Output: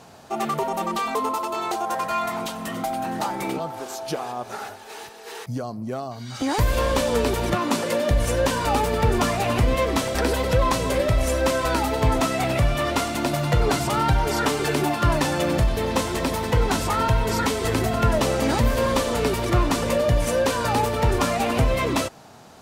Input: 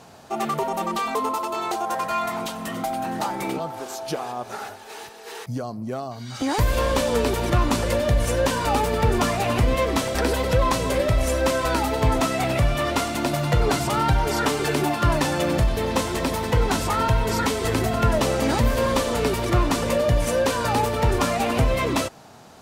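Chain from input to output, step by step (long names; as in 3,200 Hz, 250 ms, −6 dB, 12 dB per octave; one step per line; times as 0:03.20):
0:07.54–0:08.11: high-pass filter 160 Hz 24 dB per octave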